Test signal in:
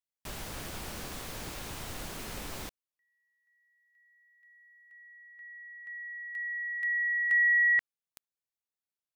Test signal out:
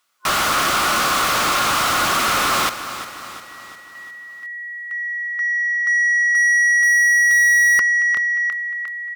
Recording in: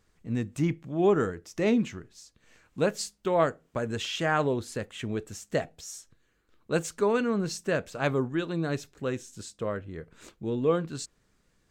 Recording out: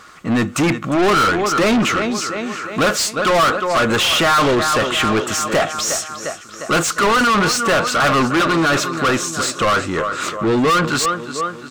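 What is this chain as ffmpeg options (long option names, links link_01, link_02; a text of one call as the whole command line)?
ffmpeg -i in.wav -filter_complex "[0:a]superequalizer=7b=0.631:10b=2.82,aecho=1:1:354|708|1062|1416|1770:0.141|0.0749|0.0397|0.021|0.0111,asplit=2[link_01][link_02];[link_02]highpass=frequency=720:poles=1,volume=36dB,asoftclip=type=tanh:threshold=-7.5dB[link_03];[link_01][link_03]amix=inputs=2:normalize=0,lowpass=frequency=5000:poles=1,volume=-6dB" out.wav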